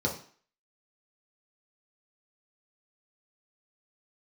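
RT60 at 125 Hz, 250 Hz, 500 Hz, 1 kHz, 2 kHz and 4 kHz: 0.40, 0.45, 0.45, 0.50, 0.50, 0.45 s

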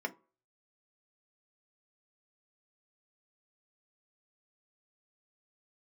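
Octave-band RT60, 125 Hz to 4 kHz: 0.30, 0.30, 0.35, 0.40, 0.25, 0.15 s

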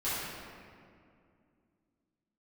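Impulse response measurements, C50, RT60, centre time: -3.5 dB, 2.3 s, 0.141 s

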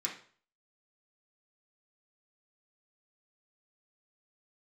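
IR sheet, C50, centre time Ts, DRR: 7.5 dB, 22 ms, -4.0 dB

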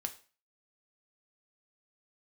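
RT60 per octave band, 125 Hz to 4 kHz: 0.35, 0.40, 0.40, 0.40, 0.40, 0.35 s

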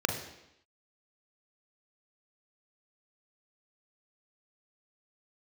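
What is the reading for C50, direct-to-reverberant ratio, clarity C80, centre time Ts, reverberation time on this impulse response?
7.0 dB, 3.5 dB, 9.5 dB, 26 ms, 0.85 s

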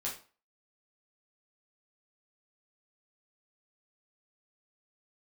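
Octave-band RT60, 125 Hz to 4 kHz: 0.35, 0.35, 0.35, 0.40, 0.35, 0.30 s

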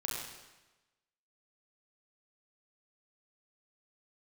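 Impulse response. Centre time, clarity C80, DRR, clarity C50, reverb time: 77 ms, 2.0 dB, -3.5 dB, 0.0 dB, 1.1 s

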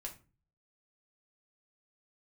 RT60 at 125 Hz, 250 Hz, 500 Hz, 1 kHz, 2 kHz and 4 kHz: 0.70, 0.50, 0.35, 0.30, 0.30, 0.25 s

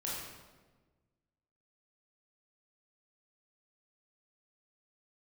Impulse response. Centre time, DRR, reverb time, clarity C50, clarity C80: 85 ms, -6.0 dB, 1.3 s, -1.0 dB, 2.0 dB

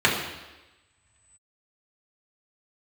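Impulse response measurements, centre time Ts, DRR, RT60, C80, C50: 44 ms, -5.0 dB, 1.1 s, 6.5 dB, 4.5 dB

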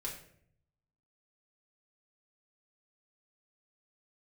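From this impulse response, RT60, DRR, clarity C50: 0.65 s, -4.0 dB, 7.0 dB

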